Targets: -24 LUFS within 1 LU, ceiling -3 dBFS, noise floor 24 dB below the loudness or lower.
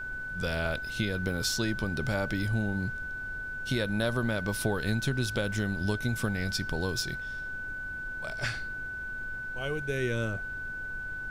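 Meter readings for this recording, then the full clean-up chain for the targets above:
steady tone 1500 Hz; tone level -35 dBFS; noise floor -38 dBFS; noise floor target -56 dBFS; loudness -32.0 LUFS; peak -13.5 dBFS; loudness target -24.0 LUFS
-> notch 1500 Hz, Q 30; noise print and reduce 18 dB; gain +8 dB

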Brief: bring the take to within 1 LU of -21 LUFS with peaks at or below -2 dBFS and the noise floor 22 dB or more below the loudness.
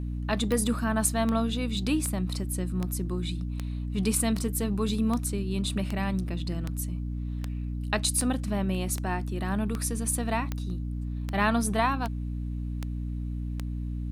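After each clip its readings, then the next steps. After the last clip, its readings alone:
clicks 18; hum 60 Hz; harmonics up to 300 Hz; hum level -30 dBFS; loudness -29.5 LUFS; peak -8.5 dBFS; loudness target -21.0 LUFS
-> de-click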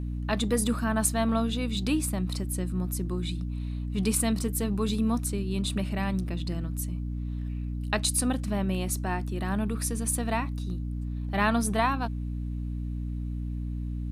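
clicks 0; hum 60 Hz; harmonics up to 300 Hz; hum level -30 dBFS
-> de-hum 60 Hz, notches 5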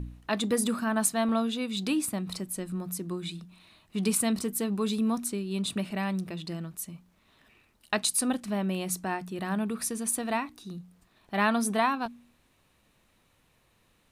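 hum none; loudness -30.0 LUFS; peak -8.0 dBFS; loudness target -21.0 LUFS
-> gain +9 dB; limiter -2 dBFS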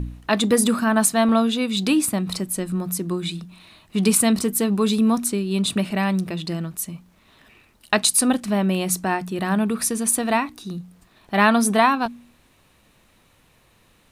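loudness -21.0 LUFS; peak -2.0 dBFS; noise floor -58 dBFS

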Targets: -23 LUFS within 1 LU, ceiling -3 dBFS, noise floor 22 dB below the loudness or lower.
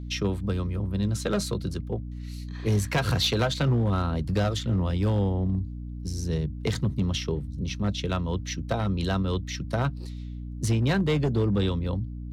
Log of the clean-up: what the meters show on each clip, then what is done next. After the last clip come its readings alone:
clipped 1.4%; flat tops at -18.5 dBFS; hum 60 Hz; harmonics up to 300 Hz; hum level -33 dBFS; loudness -27.5 LUFS; peak -18.5 dBFS; loudness target -23.0 LUFS
-> clip repair -18.5 dBFS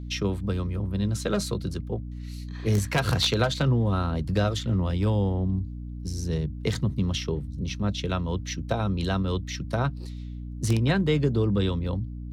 clipped 0.0%; hum 60 Hz; harmonics up to 300 Hz; hum level -33 dBFS
-> de-hum 60 Hz, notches 5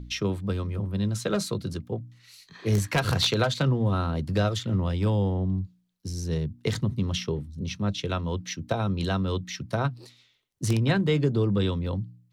hum none; loudness -27.5 LUFS; peak -9.0 dBFS; loudness target -23.0 LUFS
-> gain +4.5 dB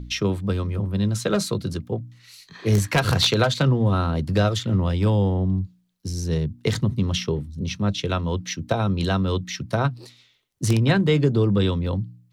loudness -23.0 LUFS; peak -4.5 dBFS; noise floor -61 dBFS

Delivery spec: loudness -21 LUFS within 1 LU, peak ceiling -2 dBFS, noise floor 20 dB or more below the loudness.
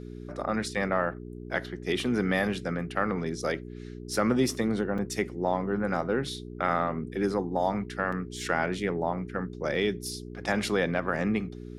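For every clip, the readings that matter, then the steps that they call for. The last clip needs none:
dropouts 2; longest dropout 5.3 ms; hum 60 Hz; harmonics up to 420 Hz; hum level -38 dBFS; loudness -29.5 LUFS; peak -11.5 dBFS; loudness target -21.0 LUFS
-> interpolate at 4.98/8.12, 5.3 ms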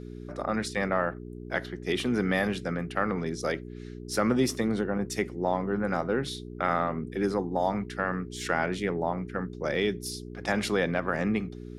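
dropouts 0; hum 60 Hz; harmonics up to 420 Hz; hum level -38 dBFS
-> de-hum 60 Hz, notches 7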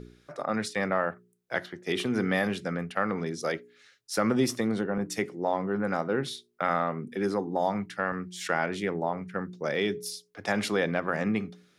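hum none; loudness -30.0 LUFS; peak -12.0 dBFS; loudness target -21.0 LUFS
-> gain +9 dB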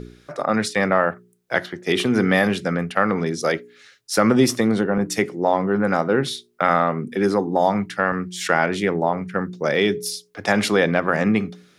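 loudness -21.0 LUFS; peak -3.0 dBFS; noise floor -58 dBFS

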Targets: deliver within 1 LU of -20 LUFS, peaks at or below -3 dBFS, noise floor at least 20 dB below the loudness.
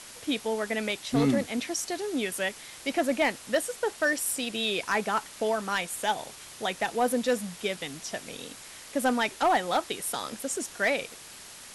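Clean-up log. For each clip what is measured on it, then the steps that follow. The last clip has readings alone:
clipped 0.4%; flat tops at -17.5 dBFS; noise floor -46 dBFS; noise floor target -49 dBFS; loudness -29.0 LUFS; peak -17.5 dBFS; loudness target -20.0 LUFS
-> clip repair -17.5 dBFS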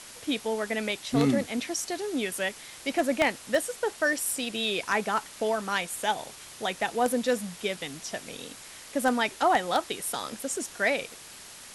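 clipped 0.0%; noise floor -46 dBFS; noise floor target -49 dBFS
-> denoiser 6 dB, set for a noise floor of -46 dBFS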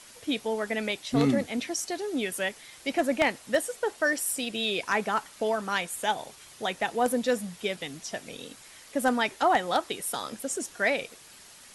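noise floor -51 dBFS; loudness -29.0 LUFS; peak -8.5 dBFS; loudness target -20.0 LUFS
-> gain +9 dB; limiter -3 dBFS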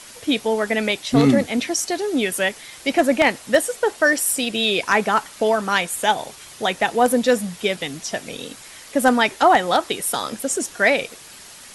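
loudness -20.0 LUFS; peak -3.0 dBFS; noise floor -42 dBFS

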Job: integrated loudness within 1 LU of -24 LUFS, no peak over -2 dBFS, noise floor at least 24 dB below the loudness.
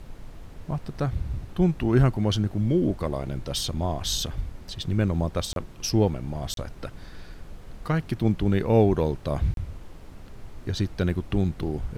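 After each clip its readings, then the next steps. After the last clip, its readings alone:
dropouts 3; longest dropout 32 ms; noise floor -44 dBFS; noise floor target -50 dBFS; loudness -26.0 LUFS; peak -8.5 dBFS; loudness target -24.0 LUFS
-> interpolate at 5.53/6.54/9.54, 32 ms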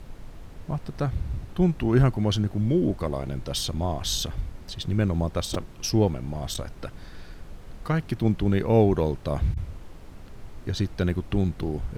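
dropouts 0; noise floor -44 dBFS; noise floor target -50 dBFS
-> noise print and reduce 6 dB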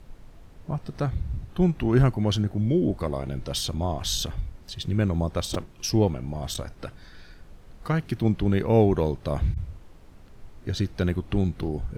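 noise floor -49 dBFS; noise floor target -50 dBFS
-> noise print and reduce 6 dB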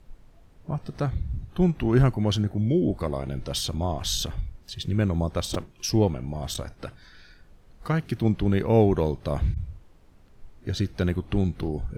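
noise floor -54 dBFS; loudness -26.0 LUFS; peak -8.5 dBFS; loudness target -24.0 LUFS
-> gain +2 dB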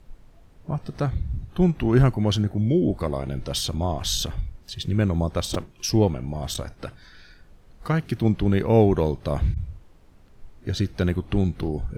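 loudness -24.0 LUFS; peak -6.5 dBFS; noise floor -52 dBFS

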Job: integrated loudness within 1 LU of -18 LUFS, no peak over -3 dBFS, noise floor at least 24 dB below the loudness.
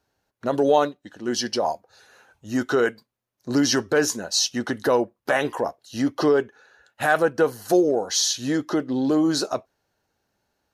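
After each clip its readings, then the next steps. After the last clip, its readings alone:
loudness -23.0 LUFS; peak -6.5 dBFS; loudness target -18.0 LUFS
-> gain +5 dB; limiter -3 dBFS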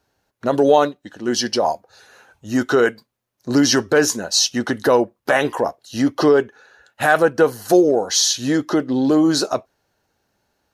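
loudness -18.0 LUFS; peak -3.0 dBFS; noise floor -73 dBFS

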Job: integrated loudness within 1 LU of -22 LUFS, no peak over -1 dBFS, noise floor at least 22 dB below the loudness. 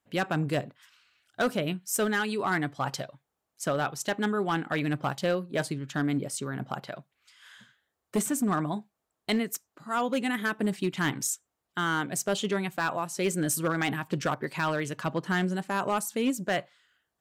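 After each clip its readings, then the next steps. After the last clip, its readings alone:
clipped 0.9%; flat tops at -20.5 dBFS; loudness -30.0 LUFS; peak -20.5 dBFS; loudness target -22.0 LUFS
-> clip repair -20.5 dBFS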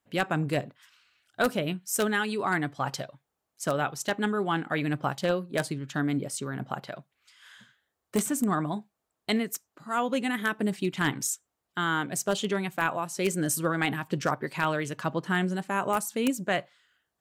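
clipped 0.0%; loudness -29.5 LUFS; peak -11.5 dBFS; loudness target -22.0 LUFS
-> gain +7.5 dB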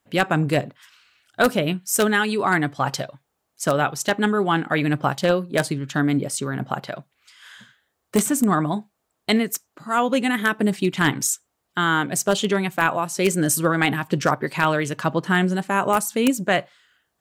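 loudness -22.0 LUFS; peak -4.0 dBFS; noise floor -76 dBFS

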